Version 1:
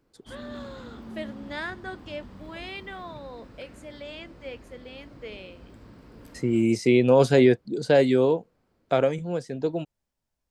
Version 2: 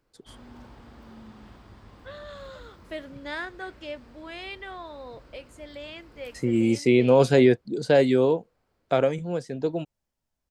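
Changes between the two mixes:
first voice: entry +1.75 s; background: add bell 230 Hz -8.5 dB 2 oct

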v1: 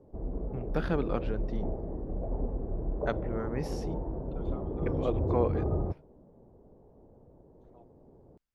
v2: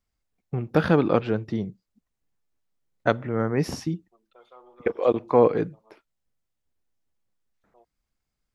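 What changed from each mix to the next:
first voice +11.0 dB; background: muted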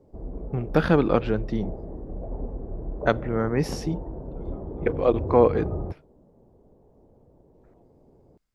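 second voice -7.5 dB; background: unmuted

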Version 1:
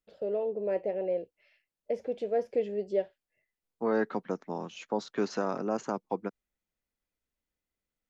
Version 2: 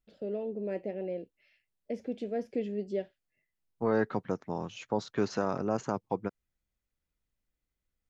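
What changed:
first voice: add ten-band EQ 250 Hz +8 dB, 500 Hz -7 dB, 1000 Hz -7 dB; second voice: remove HPF 180 Hz 24 dB/oct

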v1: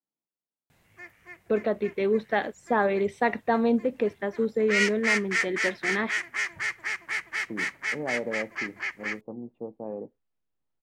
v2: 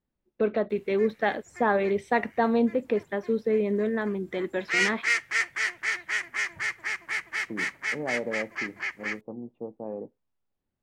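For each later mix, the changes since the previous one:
first voice: entry -1.10 s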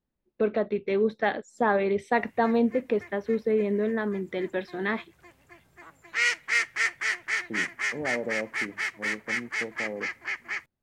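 background: entry +1.45 s

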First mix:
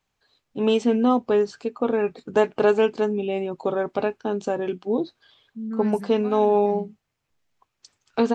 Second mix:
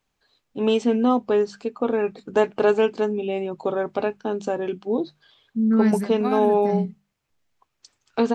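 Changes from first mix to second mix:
second voice +11.5 dB; master: add notches 50/100/150/200 Hz

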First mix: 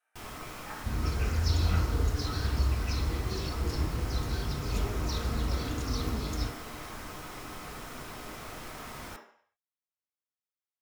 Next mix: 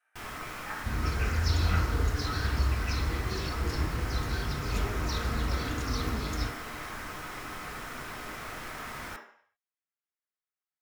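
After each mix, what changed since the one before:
master: add bell 1700 Hz +7 dB 1.2 oct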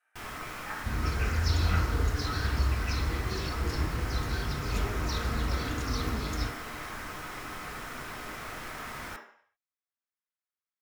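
none

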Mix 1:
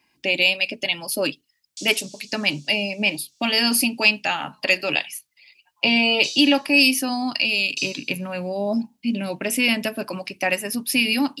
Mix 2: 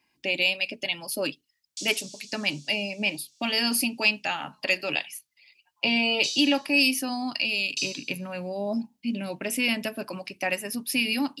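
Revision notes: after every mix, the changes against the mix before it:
speech -5.5 dB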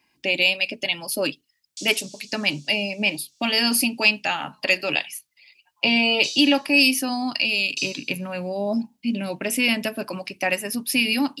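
speech +4.5 dB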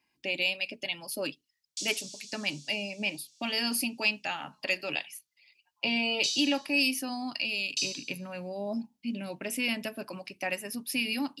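speech -9.5 dB

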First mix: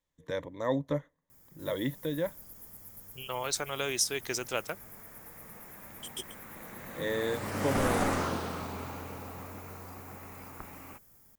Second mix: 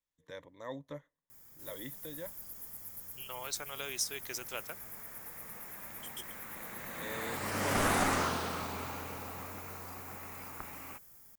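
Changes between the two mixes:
first voice -11.5 dB; second voice -9.0 dB; master: add tilt shelf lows -3.5 dB, about 790 Hz

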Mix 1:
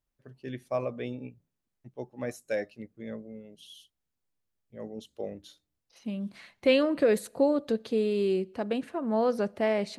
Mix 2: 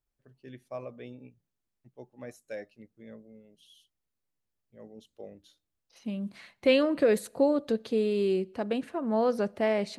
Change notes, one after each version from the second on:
first voice -8.5 dB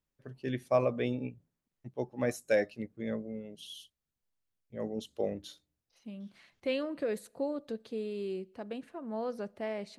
first voice +12.0 dB; second voice -10.0 dB

